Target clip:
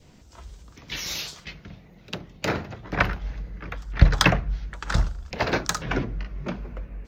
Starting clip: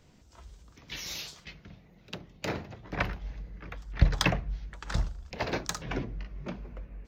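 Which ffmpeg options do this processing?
-af "adynamicequalizer=threshold=0.00316:dfrequency=1400:dqfactor=2.7:tfrequency=1400:tqfactor=2.7:attack=5:release=100:ratio=0.375:range=2.5:mode=boostabove:tftype=bell,volume=7dB"

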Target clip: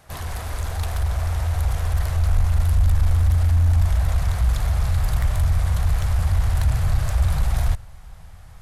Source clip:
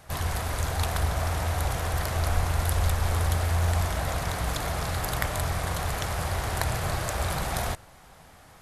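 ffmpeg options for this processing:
-af "asoftclip=type=tanh:threshold=-21dB,asubboost=boost=11.5:cutoff=86,acontrast=50,volume=-7dB"

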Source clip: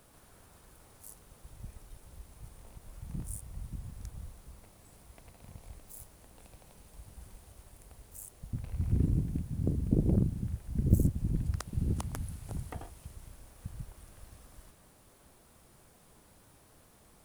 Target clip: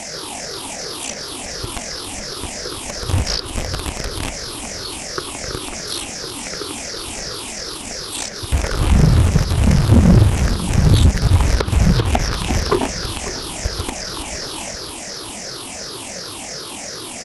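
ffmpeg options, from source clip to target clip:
-filter_complex "[0:a]afftfilt=real='re*pow(10,14/40*sin(2*PI*(0.59*log(max(b,1)*sr/1024/100)/log(2)-(-2.8)*(pts-256)/sr)))':imag='im*pow(10,14/40*sin(2*PI*(0.59*log(max(b,1)*sr/1024/100)/log(2)-(-2.8)*(pts-256)/sr)))':win_size=1024:overlap=0.75,asplit=2[a][b];[b]acrusher=bits=5:mix=0:aa=0.000001,volume=-11dB[c];[a][c]amix=inputs=2:normalize=0,acrossover=split=5900[d][e];[e]acompressor=threshold=-56dB:ratio=4:attack=1:release=60[f];[d][f]amix=inputs=2:normalize=0,crystalizer=i=1.5:c=0,asplit=2[g][h];[h]highpass=f=720:p=1,volume=32dB,asoftclip=type=tanh:threshold=-5.5dB[i];[g][i]amix=inputs=2:normalize=0,lowpass=f=4.5k:p=1,volume=-6dB,asetrate=24046,aresample=44100,atempo=1.83401,asplit=2[j][k];[k]adelay=545,lowpass=f=2k:p=1,volume=-14dB,asplit=2[l][m];[m]adelay=545,lowpass=f=2k:p=1,volume=0.54,asplit=2[n][o];[o]adelay=545,lowpass=f=2k:p=1,volume=0.54,asplit=2[p][q];[q]adelay=545,lowpass=f=2k:p=1,volume=0.54,asplit=2[r][s];[s]adelay=545,lowpass=f=2k:p=1,volume=0.54[t];[l][n][p][r][t]amix=inputs=5:normalize=0[u];[j][u]amix=inputs=2:normalize=0,volume=5.5dB"

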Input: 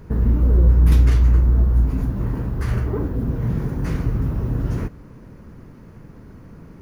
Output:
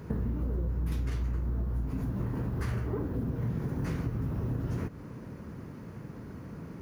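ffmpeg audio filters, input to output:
-af "highpass=77,acompressor=threshold=-29dB:ratio=6"

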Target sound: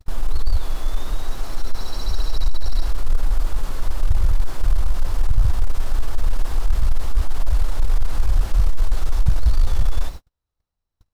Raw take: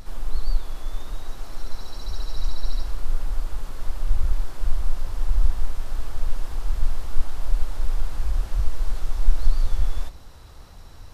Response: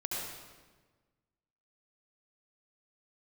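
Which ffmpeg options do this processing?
-af "aeval=exprs='0.75*sin(PI/2*3.16*val(0)/0.75)':c=same,acrusher=bits=7:mix=0:aa=0.000001,agate=range=-47dB:threshold=-19dB:ratio=16:detection=peak,volume=-6dB"

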